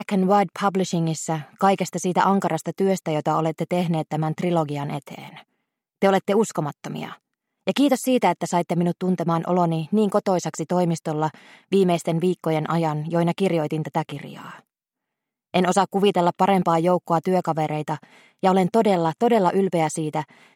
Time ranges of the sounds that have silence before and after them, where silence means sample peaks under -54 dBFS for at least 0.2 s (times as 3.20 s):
6.02–7.21 s
7.67–14.67 s